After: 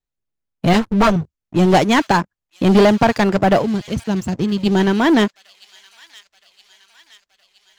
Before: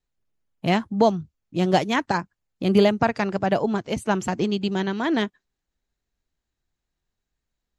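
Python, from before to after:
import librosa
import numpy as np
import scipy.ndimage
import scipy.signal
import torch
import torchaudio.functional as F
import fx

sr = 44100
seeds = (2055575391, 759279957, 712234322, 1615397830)

p1 = fx.lower_of_two(x, sr, delay_ms=9.5, at=(0.73, 1.16))
p2 = fx.curve_eq(p1, sr, hz=(110.0, 1200.0, 3700.0), db=(0, -20, -9), at=(3.61, 4.65), fade=0.02)
p3 = fx.leveller(p2, sr, passes=3)
y = p3 + fx.echo_wet_highpass(p3, sr, ms=968, feedback_pct=60, hz=3200.0, wet_db=-14, dry=0)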